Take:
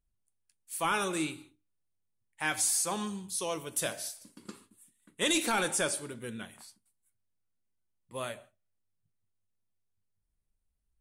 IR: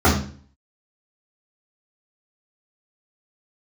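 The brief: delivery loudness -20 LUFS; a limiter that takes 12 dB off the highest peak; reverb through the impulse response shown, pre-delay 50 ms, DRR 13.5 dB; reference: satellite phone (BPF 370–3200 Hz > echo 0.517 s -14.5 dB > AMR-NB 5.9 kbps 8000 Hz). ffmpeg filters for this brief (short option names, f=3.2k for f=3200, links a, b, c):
-filter_complex "[0:a]alimiter=level_in=7dB:limit=-24dB:level=0:latency=1,volume=-7dB,asplit=2[a][b];[1:a]atrim=start_sample=2205,adelay=50[c];[b][c]afir=irnorm=-1:irlink=0,volume=-36.5dB[d];[a][d]amix=inputs=2:normalize=0,highpass=370,lowpass=3.2k,aecho=1:1:517:0.188,volume=26.5dB" -ar 8000 -c:a libopencore_amrnb -b:a 5900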